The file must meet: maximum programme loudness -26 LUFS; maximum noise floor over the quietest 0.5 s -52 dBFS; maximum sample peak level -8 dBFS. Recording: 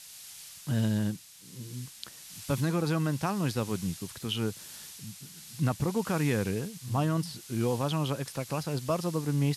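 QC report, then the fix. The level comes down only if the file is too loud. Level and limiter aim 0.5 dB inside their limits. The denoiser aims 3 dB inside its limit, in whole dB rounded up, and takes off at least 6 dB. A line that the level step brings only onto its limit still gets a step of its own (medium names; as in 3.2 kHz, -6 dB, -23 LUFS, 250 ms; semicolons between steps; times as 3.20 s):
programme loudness -31.0 LUFS: pass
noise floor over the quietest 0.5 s -47 dBFS: fail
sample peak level -18.0 dBFS: pass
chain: noise reduction 8 dB, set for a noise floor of -47 dBFS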